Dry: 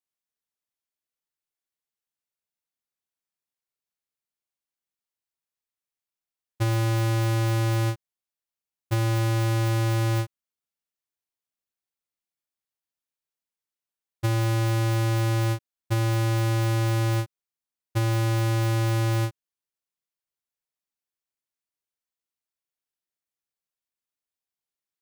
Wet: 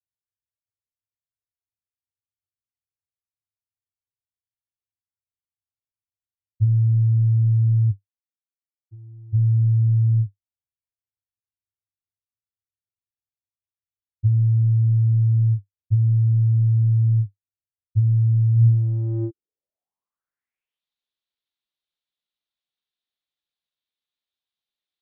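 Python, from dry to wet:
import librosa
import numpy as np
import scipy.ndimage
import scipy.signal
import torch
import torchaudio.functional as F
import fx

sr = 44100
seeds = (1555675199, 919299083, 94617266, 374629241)

y = fx.vowel_filter(x, sr, vowel='u', at=(7.9, 9.32), fade=0.02)
y = fx.filter_sweep_lowpass(y, sr, from_hz=100.0, to_hz=3700.0, start_s=18.54, end_s=20.86, q=4.9)
y = F.gain(torch.from_numpy(y), -2.0).numpy()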